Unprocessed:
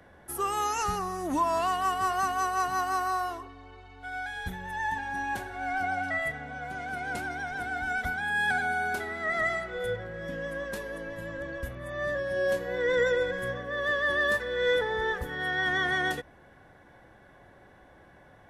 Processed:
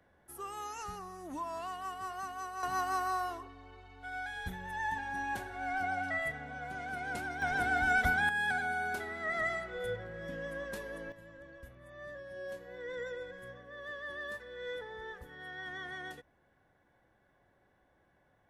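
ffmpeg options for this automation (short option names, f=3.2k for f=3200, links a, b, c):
-af "asetnsamples=n=441:p=0,asendcmd='2.63 volume volume -4.5dB;7.42 volume volume 2.5dB;8.29 volume volume -5.5dB;11.12 volume volume -15.5dB',volume=-13dB"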